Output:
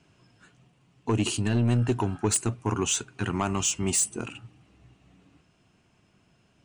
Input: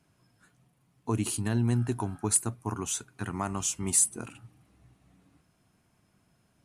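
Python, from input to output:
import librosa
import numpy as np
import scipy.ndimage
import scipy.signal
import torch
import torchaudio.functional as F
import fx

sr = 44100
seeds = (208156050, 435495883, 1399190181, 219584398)

y = scipy.signal.sosfilt(scipy.signal.butter(6, 8300.0, 'lowpass', fs=sr, output='sos'), x)
y = 10.0 ** (-23.0 / 20.0) * np.tanh(y / 10.0 ** (-23.0 / 20.0))
y = fx.peak_eq(y, sr, hz=2800.0, db=8.0, octaves=0.37)
y = fx.rider(y, sr, range_db=10, speed_s=2.0)
y = fx.peak_eq(y, sr, hz=390.0, db=3.5, octaves=0.58)
y = F.gain(torch.from_numpy(y), 6.0).numpy()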